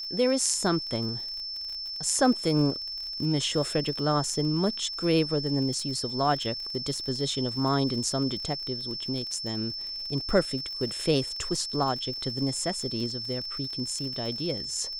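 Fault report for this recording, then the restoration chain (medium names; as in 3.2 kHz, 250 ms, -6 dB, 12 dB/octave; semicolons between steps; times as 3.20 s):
crackle 50 per s -35 dBFS
whine 5.3 kHz -33 dBFS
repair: de-click; band-stop 5.3 kHz, Q 30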